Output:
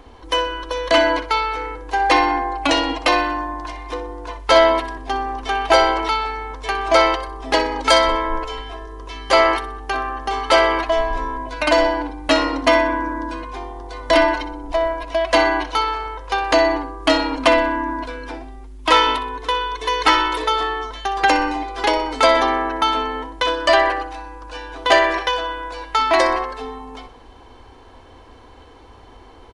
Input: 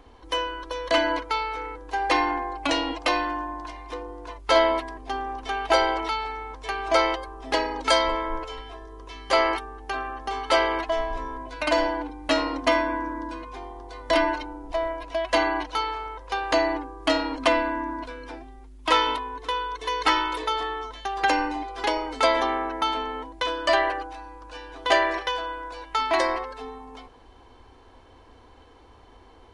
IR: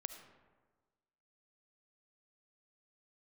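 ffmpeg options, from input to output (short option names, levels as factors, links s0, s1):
-af "acontrast=56,aecho=1:1:62|124|186|248:0.2|0.0838|0.0352|0.0148,volume=1.12"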